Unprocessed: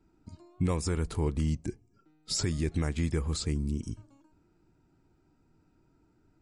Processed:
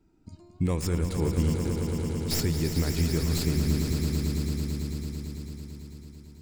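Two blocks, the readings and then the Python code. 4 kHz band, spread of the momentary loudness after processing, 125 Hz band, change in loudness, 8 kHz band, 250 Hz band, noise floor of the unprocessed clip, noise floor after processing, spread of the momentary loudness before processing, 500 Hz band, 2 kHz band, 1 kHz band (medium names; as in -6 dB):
+4.0 dB, 14 LU, +5.5 dB, +3.5 dB, +3.0 dB, +5.5 dB, -68 dBFS, -55 dBFS, 7 LU, +5.0 dB, +4.0 dB, +2.0 dB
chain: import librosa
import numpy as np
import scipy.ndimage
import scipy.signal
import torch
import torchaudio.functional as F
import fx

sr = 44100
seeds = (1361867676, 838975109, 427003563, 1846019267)

y = fx.tracing_dist(x, sr, depth_ms=0.069)
y = fx.peak_eq(y, sr, hz=1200.0, db=-4.5, octaves=1.5)
y = fx.echo_swell(y, sr, ms=111, loudest=5, wet_db=-9)
y = y * librosa.db_to_amplitude(2.0)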